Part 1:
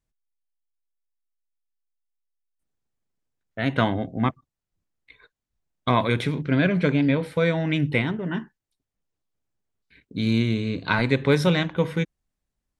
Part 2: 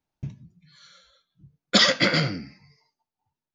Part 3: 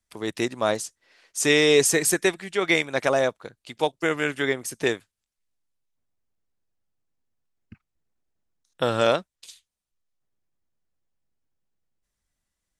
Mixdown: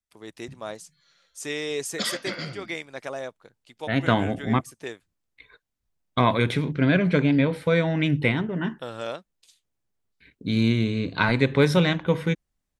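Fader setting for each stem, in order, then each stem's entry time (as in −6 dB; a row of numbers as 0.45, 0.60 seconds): +0.5, −11.5, −12.0 decibels; 0.30, 0.25, 0.00 seconds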